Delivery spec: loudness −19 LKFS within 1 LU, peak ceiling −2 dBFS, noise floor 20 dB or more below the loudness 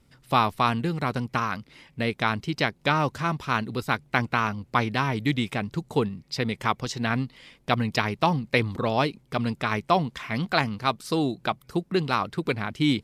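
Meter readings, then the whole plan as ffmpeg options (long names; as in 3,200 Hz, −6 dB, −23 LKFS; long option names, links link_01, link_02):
integrated loudness −26.5 LKFS; sample peak −4.5 dBFS; target loudness −19.0 LKFS
→ -af "volume=7.5dB,alimiter=limit=-2dB:level=0:latency=1"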